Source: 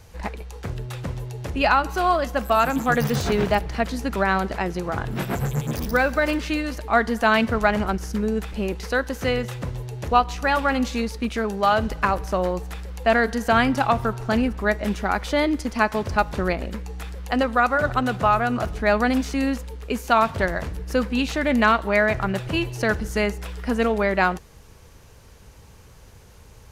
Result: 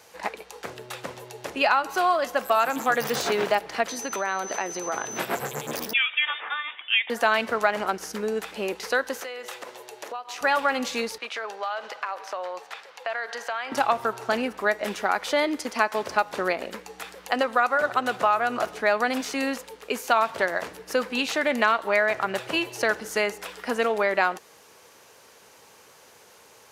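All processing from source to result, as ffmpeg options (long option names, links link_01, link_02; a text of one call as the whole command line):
ffmpeg -i in.wav -filter_complex "[0:a]asettb=1/sr,asplit=3[link_01][link_02][link_03];[link_01]atrim=end=3.884[link_04];[link_02]atrim=start=3.88:end=5.19,asetpts=PTS-STARTPTS,afade=type=in:duration=0.004:curve=qsin,afade=type=out:start_time=1.306:duration=0.004:curve=qsin,aeval=exprs='val(0)+0.0141*sin(2*PI*6100*n/s)':channel_layout=same,acompressor=threshold=-23dB:ratio=6:attack=3.2:release=140:knee=1:detection=peak,highpass=frequency=120:poles=1[link_05];[link_03]atrim=start=5.186[link_06];[link_04][link_05]acrossfade=duration=0.004:curve1=hsin:curve2=qsin[link_07];[link_07][link_06]acrossfade=duration=0.004:curve1=qsin:curve2=hsin,asettb=1/sr,asplit=3[link_08][link_09][link_10];[link_08]atrim=end=5.934[link_11];[link_09]atrim=start=5.93:end=7.1,asetpts=PTS-STARTPTS,afade=type=in:duration=0.004:curve=qsin,afade=type=out:start_time=1.166:duration=0.004:curve=qsin,highpass=920,lowpass=frequency=3300:width_type=q:width=0.5098,lowpass=frequency=3300:width_type=q:width=0.6013,lowpass=frequency=3300:width_type=q:width=0.9,lowpass=frequency=3300:width_type=q:width=2.563,afreqshift=-3900[link_12];[link_10]atrim=start=7.096[link_13];[link_11][link_12]acrossfade=duration=0.004:curve1=hsin:curve2=qsin[link_14];[link_14][link_13]acrossfade=duration=0.004:curve1=qsin:curve2=hsin,asettb=1/sr,asplit=3[link_15][link_16][link_17];[link_15]atrim=end=9.204[link_18];[link_16]atrim=start=9.2:end=10.41,asetpts=PTS-STARTPTS,afade=type=in:duration=0.004:curve=qsin,afade=type=out:start_time=1.206:duration=0.004:curve=qsin,highpass=400,acompressor=threshold=-33dB:ratio=8:attack=3.2:release=140:knee=1:detection=peak[link_19];[link_17]atrim=start=10.406[link_20];[link_18][link_19]acrossfade=duration=0.004:curve1=hsin:curve2=qsin[link_21];[link_21][link_20]acrossfade=duration=0.004:curve1=qsin:curve2=hsin,asettb=1/sr,asplit=3[link_22][link_23][link_24];[link_22]atrim=end=11.184[link_25];[link_23]atrim=start=11.18:end=13.72,asetpts=PTS-STARTPTS,afade=type=in:duration=0.004:curve=qsin,afade=type=out:start_time=2.536:duration=0.004:curve=qsin,acrossover=split=500 5800:gain=0.0708 1 0.2[link_26][link_27][link_28];[link_26][link_27][link_28]amix=inputs=3:normalize=0,acompressor=threshold=-29dB:ratio=5:attack=3.2:release=140:knee=1:detection=peak[link_29];[link_24]atrim=start=13.716[link_30];[link_25][link_29]acrossfade=duration=0.004:curve1=hsin:curve2=qsin[link_31];[link_31][link_30]acrossfade=duration=0.004:curve1=qsin:curve2=hsin,highpass=430,acompressor=threshold=-23dB:ratio=2,volume=2.5dB" out.wav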